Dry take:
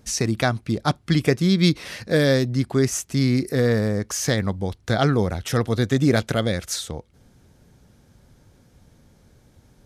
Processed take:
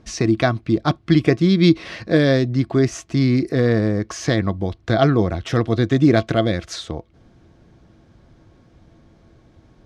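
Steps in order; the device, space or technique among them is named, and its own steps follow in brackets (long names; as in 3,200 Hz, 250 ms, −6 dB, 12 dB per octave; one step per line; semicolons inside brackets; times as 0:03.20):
inside a cardboard box (low-pass filter 4,100 Hz 12 dB per octave; hollow resonant body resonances 330/670/1,100 Hz, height 11 dB, ringing for 100 ms)
dynamic equaliser 890 Hz, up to −3 dB, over −31 dBFS, Q 0.81
level +2.5 dB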